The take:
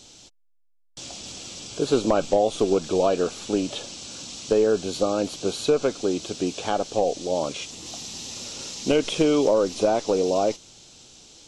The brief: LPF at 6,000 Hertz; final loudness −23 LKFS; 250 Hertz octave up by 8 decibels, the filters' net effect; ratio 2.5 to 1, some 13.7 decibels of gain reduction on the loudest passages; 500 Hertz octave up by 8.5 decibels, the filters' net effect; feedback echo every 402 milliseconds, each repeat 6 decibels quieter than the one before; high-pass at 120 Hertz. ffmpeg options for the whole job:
ffmpeg -i in.wav -af "highpass=120,lowpass=6000,equalizer=frequency=250:width_type=o:gain=7.5,equalizer=frequency=500:width_type=o:gain=8,acompressor=threshold=-29dB:ratio=2.5,aecho=1:1:402|804|1206|1608|2010|2412:0.501|0.251|0.125|0.0626|0.0313|0.0157,volume=5dB" out.wav

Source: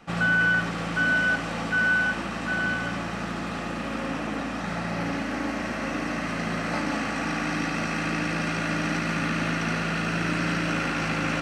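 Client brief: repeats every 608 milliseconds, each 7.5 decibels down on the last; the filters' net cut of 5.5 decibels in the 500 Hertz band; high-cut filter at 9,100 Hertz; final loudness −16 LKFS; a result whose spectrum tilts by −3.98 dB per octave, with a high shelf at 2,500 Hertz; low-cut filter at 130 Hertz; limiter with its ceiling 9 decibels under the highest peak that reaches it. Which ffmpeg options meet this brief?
ffmpeg -i in.wav -af "highpass=130,lowpass=9100,equalizer=frequency=500:width_type=o:gain=-7.5,highshelf=frequency=2500:gain=3.5,alimiter=limit=-22.5dB:level=0:latency=1,aecho=1:1:608|1216|1824|2432|3040:0.422|0.177|0.0744|0.0312|0.0131,volume=14dB" out.wav

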